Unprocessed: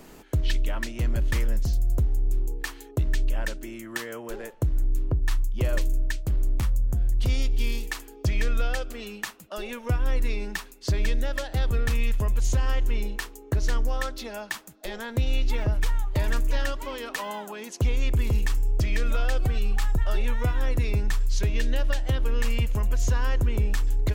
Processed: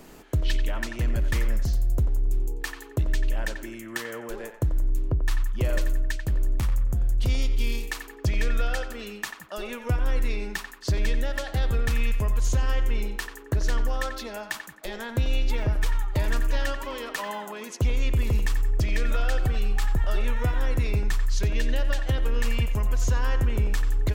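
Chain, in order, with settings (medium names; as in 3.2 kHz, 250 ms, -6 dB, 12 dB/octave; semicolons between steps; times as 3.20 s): band-passed feedback delay 90 ms, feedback 49%, band-pass 1.3 kHz, level -7 dB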